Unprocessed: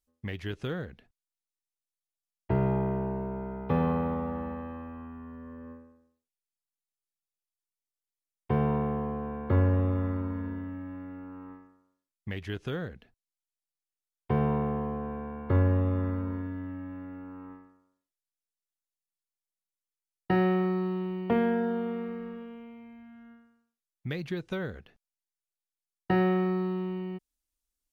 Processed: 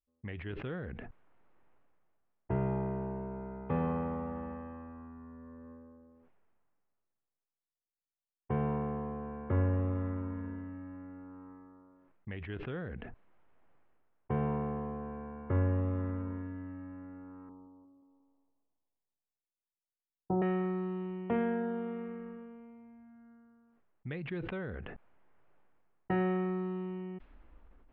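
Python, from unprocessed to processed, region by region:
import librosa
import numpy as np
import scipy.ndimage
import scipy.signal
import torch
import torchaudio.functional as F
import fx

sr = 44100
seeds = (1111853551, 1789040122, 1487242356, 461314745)

y = fx.chain(x, sr, fx.steep_lowpass(hz=1100.0, slope=48),
    fx.echo_thinned(ms=177, feedback_pct=43, hz=180.0, wet_db=-19.0), at=(17.49, 20.42))
y = fx.env_lowpass(y, sr, base_hz=1100.0, full_db=-25.0)
y = scipy.signal.sosfilt(scipy.signal.butter(4, 2900.0, 'lowpass', fs=sr, output='sos'), y)
y = fx.sustainer(y, sr, db_per_s=25.0)
y = y * 10.0 ** (-6.0 / 20.0)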